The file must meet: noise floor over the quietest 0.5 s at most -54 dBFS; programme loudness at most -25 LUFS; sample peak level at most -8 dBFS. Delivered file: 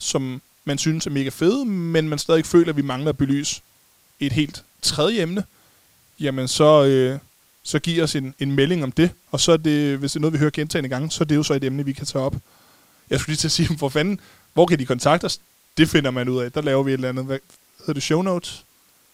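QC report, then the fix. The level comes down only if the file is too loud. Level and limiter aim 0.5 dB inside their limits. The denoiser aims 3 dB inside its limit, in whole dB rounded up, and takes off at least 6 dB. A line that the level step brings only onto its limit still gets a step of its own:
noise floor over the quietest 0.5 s -57 dBFS: pass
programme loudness -21.0 LUFS: fail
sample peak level -1.5 dBFS: fail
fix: trim -4.5 dB; peak limiter -8.5 dBFS

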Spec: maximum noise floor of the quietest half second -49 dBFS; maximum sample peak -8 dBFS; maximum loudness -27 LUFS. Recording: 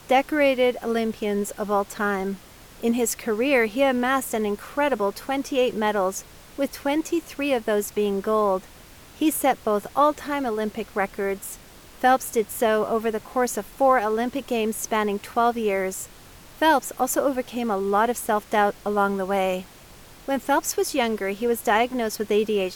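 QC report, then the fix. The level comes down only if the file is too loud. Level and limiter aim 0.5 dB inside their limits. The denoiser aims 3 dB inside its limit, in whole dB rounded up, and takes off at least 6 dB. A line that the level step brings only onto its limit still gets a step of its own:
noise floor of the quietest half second -47 dBFS: fail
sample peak -9.0 dBFS: pass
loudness -23.5 LUFS: fail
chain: trim -4 dB

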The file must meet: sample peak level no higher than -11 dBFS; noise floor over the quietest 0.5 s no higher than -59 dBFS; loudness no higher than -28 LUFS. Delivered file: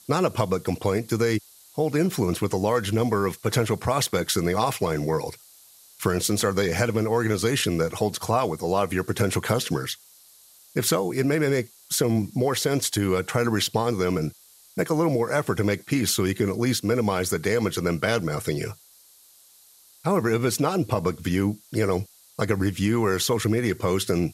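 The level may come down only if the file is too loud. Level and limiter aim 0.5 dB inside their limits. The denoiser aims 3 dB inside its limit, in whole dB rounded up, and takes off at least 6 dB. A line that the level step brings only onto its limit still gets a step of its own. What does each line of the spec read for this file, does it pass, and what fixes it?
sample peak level -8.5 dBFS: fail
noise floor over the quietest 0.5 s -54 dBFS: fail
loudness -24.5 LUFS: fail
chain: noise reduction 6 dB, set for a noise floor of -54 dBFS; trim -4 dB

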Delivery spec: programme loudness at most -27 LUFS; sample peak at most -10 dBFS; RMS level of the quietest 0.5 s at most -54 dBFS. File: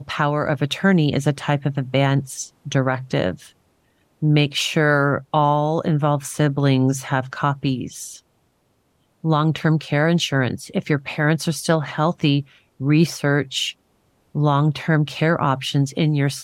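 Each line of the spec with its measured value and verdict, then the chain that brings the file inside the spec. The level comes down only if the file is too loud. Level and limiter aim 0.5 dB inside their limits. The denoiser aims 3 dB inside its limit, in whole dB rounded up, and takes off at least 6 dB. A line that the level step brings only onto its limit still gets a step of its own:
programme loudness -20.5 LUFS: fail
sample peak -5.5 dBFS: fail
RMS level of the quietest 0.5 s -65 dBFS: pass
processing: trim -7 dB

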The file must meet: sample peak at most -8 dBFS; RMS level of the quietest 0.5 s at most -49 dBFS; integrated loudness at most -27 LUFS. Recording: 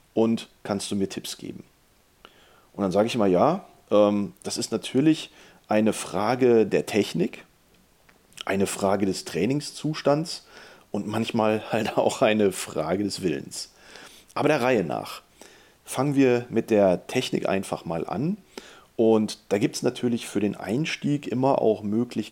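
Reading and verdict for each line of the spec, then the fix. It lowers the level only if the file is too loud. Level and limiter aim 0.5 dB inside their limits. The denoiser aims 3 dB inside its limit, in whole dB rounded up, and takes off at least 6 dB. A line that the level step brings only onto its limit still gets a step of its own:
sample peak -5.5 dBFS: fail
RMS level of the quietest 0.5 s -61 dBFS: pass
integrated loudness -24.5 LUFS: fail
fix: trim -3 dB

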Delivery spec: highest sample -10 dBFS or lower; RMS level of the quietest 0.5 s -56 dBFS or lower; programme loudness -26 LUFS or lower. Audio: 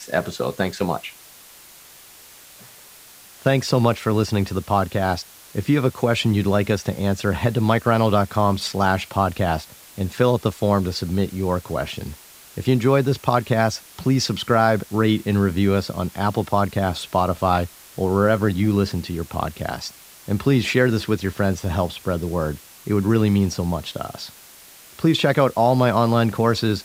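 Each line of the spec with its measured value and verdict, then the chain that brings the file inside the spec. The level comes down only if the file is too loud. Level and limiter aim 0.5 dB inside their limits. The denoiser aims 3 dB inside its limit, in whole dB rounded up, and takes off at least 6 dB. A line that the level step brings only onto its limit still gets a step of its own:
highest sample -3.0 dBFS: fail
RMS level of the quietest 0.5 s -46 dBFS: fail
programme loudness -21.0 LUFS: fail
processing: noise reduction 8 dB, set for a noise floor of -46 dBFS; trim -5.5 dB; peak limiter -10.5 dBFS

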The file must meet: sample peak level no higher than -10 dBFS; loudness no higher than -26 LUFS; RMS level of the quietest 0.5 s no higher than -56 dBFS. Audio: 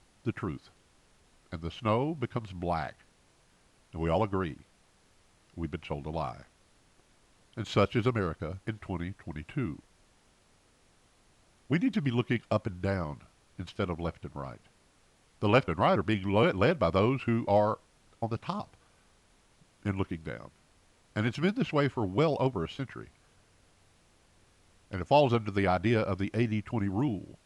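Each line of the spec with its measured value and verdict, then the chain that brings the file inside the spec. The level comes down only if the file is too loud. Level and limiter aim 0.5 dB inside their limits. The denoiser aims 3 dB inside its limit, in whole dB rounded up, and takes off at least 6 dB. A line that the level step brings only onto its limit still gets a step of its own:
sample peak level -11.5 dBFS: pass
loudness -30.5 LUFS: pass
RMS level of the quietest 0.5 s -65 dBFS: pass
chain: none needed

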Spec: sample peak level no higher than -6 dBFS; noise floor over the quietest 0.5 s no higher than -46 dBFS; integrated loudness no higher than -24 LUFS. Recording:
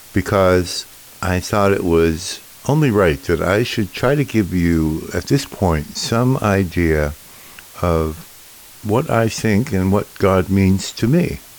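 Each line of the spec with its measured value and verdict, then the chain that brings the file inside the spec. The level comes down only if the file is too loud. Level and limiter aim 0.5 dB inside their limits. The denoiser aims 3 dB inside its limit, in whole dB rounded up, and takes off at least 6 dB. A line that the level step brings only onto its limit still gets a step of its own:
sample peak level -4.0 dBFS: fail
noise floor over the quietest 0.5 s -41 dBFS: fail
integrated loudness -17.5 LUFS: fail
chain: trim -7 dB

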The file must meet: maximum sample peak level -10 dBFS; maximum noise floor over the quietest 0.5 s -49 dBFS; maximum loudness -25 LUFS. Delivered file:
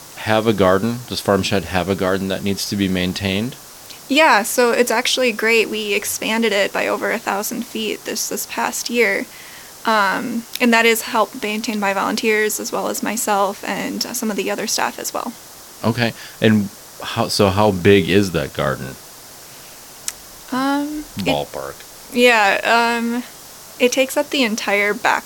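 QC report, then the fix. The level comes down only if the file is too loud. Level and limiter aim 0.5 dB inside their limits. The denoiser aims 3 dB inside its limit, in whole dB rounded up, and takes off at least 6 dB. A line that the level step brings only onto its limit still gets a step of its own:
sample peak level -1.5 dBFS: fail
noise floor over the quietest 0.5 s -39 dBFS: fail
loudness -18.0 LUFS: fail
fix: noise reduction 6 dB, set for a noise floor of -39 dBFS; trim -7.5 dB; peak limiter -10.5 dBFS

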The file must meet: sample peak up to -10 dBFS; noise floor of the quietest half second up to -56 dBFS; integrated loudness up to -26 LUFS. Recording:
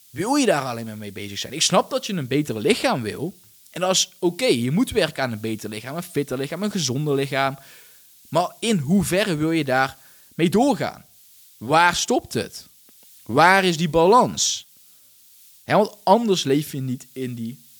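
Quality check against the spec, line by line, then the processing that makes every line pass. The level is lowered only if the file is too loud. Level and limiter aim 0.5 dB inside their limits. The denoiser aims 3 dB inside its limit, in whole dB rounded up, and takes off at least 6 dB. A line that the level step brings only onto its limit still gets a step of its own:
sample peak -2.5 dBFS: fail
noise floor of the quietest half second -52 dBFS: fail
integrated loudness -21.0 LUFS: fail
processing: trim -5.5 dB; peak limiter -10.5 dBFS

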